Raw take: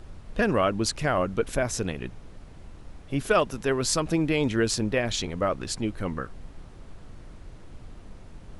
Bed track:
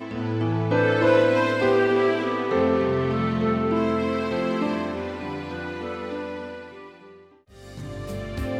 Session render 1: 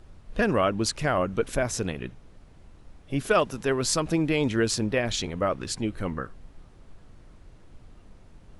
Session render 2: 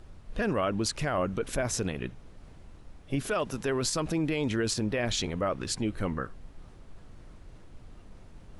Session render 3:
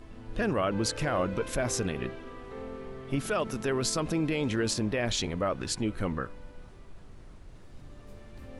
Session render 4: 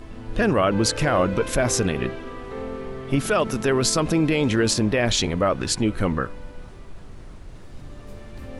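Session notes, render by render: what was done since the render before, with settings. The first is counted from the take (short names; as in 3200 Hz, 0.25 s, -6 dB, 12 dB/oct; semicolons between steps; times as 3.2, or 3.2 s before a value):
noise print and reduce 6 dB
limiter -19.5 dBFS, peak gain reduction 10 dB; reverse; upward compressor, threshold -43 dBFS; reverse
add bed track -20 dB
gain +8.5 dB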